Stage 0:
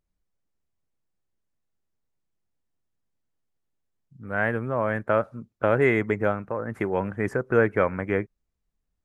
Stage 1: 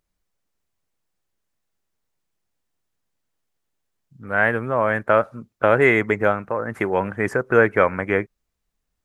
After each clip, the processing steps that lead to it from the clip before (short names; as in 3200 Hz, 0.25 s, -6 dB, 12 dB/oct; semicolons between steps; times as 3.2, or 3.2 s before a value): low shelf 440 Hz -7.5 dB; gain +8 dB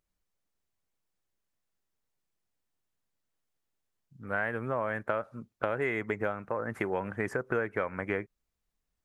compressor 6:1, threshold -21 dBFS, peak gain reduction 11 dB; gain -6 dB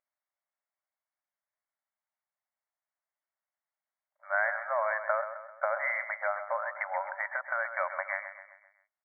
sample leveller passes 1; brick-wall FIR band-pass 550–2300 Hz; on a send: feedback echo 0.13 s, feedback 47%, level -10 dB